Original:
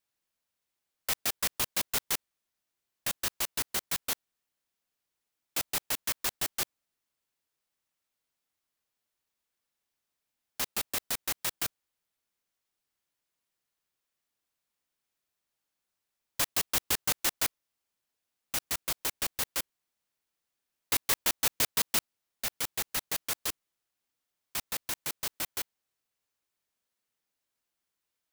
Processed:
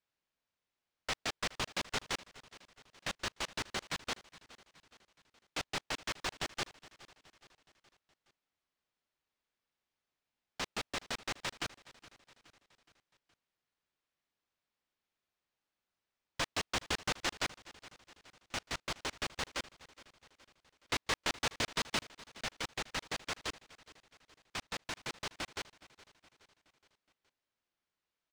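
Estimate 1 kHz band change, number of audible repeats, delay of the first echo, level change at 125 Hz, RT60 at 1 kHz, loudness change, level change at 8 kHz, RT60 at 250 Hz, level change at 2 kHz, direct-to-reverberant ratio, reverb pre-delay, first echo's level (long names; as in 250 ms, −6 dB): −0.5 dB, 3, 419 ms, 0.0 dB, no reverb audible, −7.5 dB, −11.0 dB, no reverb audible, −1.0 dB, no reverb audible, no reverb audible, −19.0 dB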